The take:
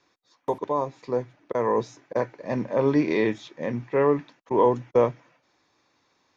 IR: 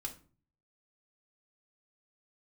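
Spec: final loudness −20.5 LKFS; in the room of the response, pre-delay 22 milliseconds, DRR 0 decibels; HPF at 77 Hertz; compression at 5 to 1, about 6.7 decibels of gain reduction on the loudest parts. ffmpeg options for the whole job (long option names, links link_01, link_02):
-filter_complex "[0:a]highpass=77,acompressor=threshold=-22dB:ratio=5,asplit=2[link_01][link_02];[1:a]atrim=start_sample=2205,adelay=22[link_03];[link_02][link_03]afir=irnorm=-1:irlink=0,volume=2dB[link_04];[link_01][link_04]amix=inputs=2:normalize=0,volume=6dB"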